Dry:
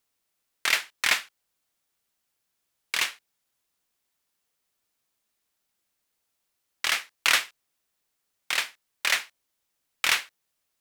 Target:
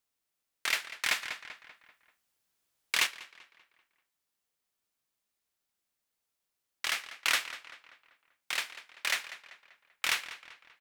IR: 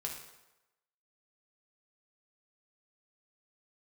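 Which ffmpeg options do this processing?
-filter_complex "[0:a]asplit=2[link_01][link_02];[link_02]adelay=194,lowpass=frequency=4100:poles=1,volume=-13.5dB,asplit=2[link_03][link_04];[link_04]adelay=194,lowpass=frequency=4100:poles=1,volume=0.48,asplit=2[link_05][link_06];[link_06]adelay=194,lowpass=frequency=4100:poles=1,volume=0.48,asplit=2[link_07][link_08];[link_08]adelay=194,lowpass=frequency=4100:poles=1,volume=0.48,asplit=2[link_09][link_10];[link_10]adelay=194,lowpass=frequency=4100:poles=1,volume=0.48[link_11];[link_01][link_03][link_05][link_07][link_09][link_11]amix=inputs=6:normalize=0,asettb=1/sr,asplit=3[link_12][link_13][link_14];[link_12]atrim=end=1.224[link_15];[link_13]atrim=start=1.22:end=3.07,asetpts=PTS-STARTPTS,afade=type=in:duration=0.004:curve=qsin,afade=type=out:start_time=1.846:duration=0.004:curve=qsin,acontrast=34[link_16];[link_14]atrim=start=3.066[link_17];[link_15][link_16]acrossfade=duration=0.004:curve1=hsin:curve2=qsin[link_18];[link_18][link_17]acrossfade=duration=0.004:curve1=qsin:curve2=hsin,volume=-6.5dB"

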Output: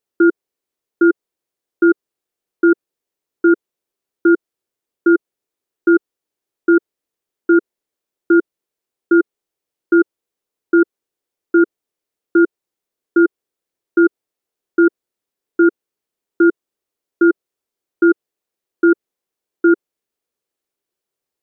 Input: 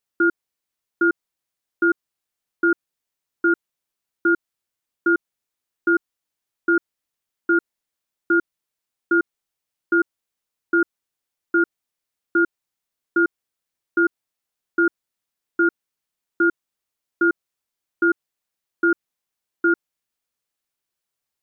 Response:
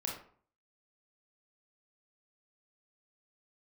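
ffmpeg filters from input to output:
-af "equalizer=frequency=400:width_type=o:width=1.3:gain=12.5,volume=-1.5dB"

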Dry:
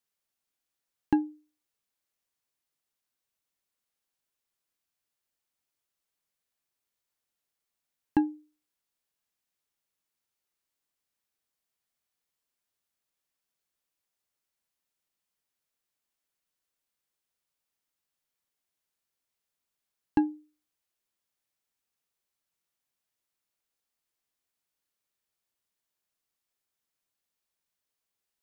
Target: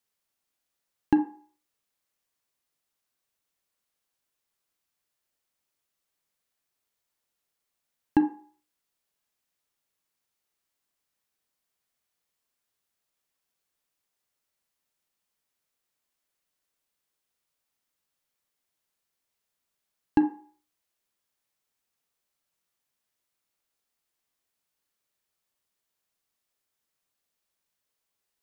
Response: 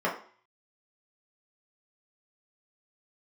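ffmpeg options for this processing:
-filter_complex "[0:a]asplit=2[link_01][link_02];[1:a]atrim=start_sample=2205,lowshelf=frequency=180:gain=-9.5,adelay=33[link_03];[link_02][link_03]afir=irnorm=-1:irlink=0,volume=-19.5dB[link_04];[link_01][link_04]amix=inputs=2:normalize=0,volume=3dB"

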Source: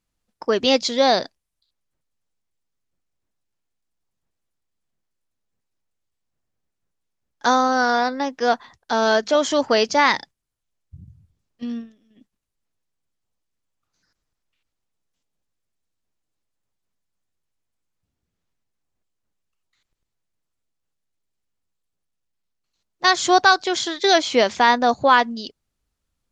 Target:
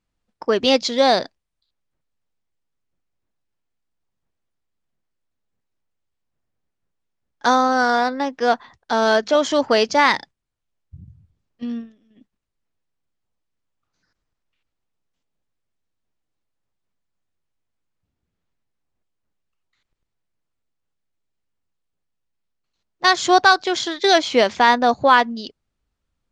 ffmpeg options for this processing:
ffmpeg -i in.wav -filter_complex "[0:a]asplit=2[link_01][link_02];[link_02]adynamicsmooth=sensitivity=3:basefreq=5300,volume=1.5dB[link_03];[link_01][link_03]amix=inputs=2:normalize=0,aresample=22050,aresample=44100,volume=-5.5dB" out.wav

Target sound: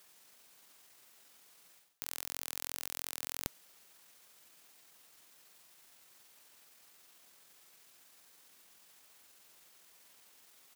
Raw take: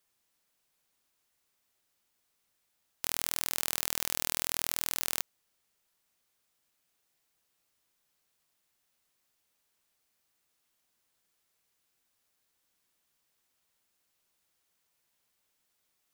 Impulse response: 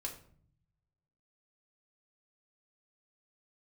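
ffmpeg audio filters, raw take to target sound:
-af "highpass=frequency=210:poles=1,areverse,acompressor=threshold=-50dB:ratio=8,areverse,atempo=1.5,volume=16dB"

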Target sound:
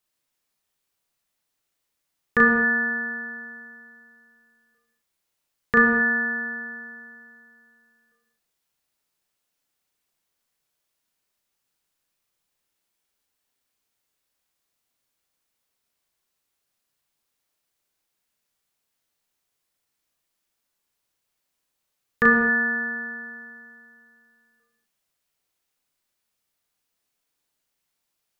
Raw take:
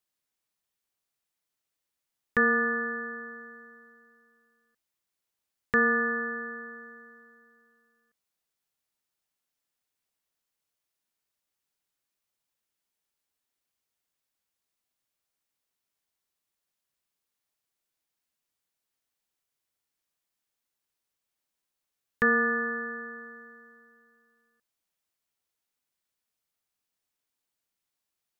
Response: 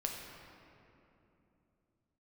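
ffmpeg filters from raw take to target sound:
-filter_complex "[0:a]asplit=2[link_01][link_02];[1:a]atrim=start_sample=2205,afade=type=out:start_time=0.29:duration=0.01,atrim=end_sample=13230,adelay=35[link_03];[link_02][link_03]afir=irnorm=-1:irlink=0,volume=-1.5dB[link_04];[link_01][link_04]amix=inputs=2:normalize=0,volume=4dB"

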